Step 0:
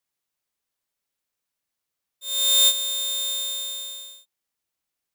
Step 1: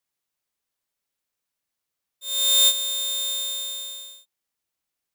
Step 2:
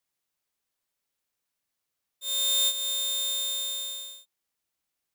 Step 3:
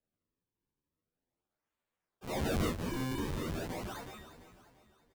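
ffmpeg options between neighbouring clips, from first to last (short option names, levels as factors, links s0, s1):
-af anull
-af "acompressor=threshold=0.0398:ratio=2"
-filter_complex "[0:a]acrusher=samples=38:mix=1:aa=0.000001:lfo=1:lforange=60.8:lforate=0.41,aecho=1:1:343|686|1029|1372:0.224|0.101|0.0453|0.0204,asplit=2[s0][s1];[s1]adelay=10.7,afreqshift=1.2[s2];[s0][s2]amix=inputs=2:normalize=1,volume=0.596"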